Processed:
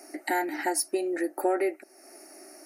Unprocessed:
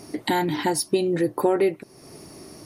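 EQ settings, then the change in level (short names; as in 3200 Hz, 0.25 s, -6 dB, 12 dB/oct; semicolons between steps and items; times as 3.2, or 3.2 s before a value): HPF 370 Hz 24 dB/oct; fixed phaser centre 690 Hz, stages 8; 0.0 dB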